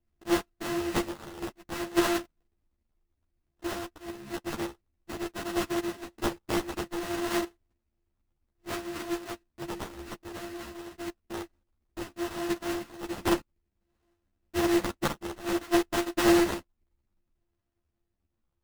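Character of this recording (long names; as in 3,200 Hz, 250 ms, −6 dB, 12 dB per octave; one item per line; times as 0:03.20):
a buzz of ramps at a fixed pitch in blocks of 128 samples
phaser sweep stages 2, 0.58 Hz, lowest notch 750–3,100 Hz
aliases and images of a low sample rate 2,300 Hz, jitter 20%
a shimmering, thickened sound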